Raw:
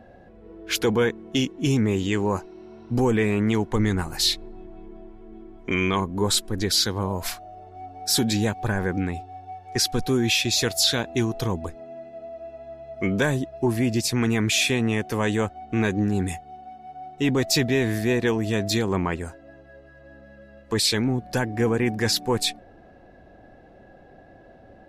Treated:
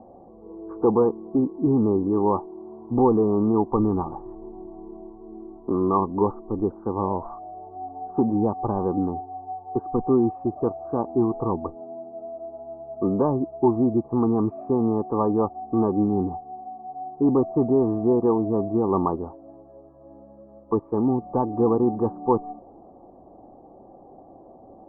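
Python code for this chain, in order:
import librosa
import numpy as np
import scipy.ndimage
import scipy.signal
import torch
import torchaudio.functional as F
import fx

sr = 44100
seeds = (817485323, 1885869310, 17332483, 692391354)

y = scipy.signal.sosfilt(scipy.signal.cheby1(6, 6, 1200.0, 'lowpass', fs=sr, output='sos'), x)
y = fx.low_shelf(y, sr, hz=260.0, db=-10.5)
y = y * 10.0 ** (9.0 / 20.0)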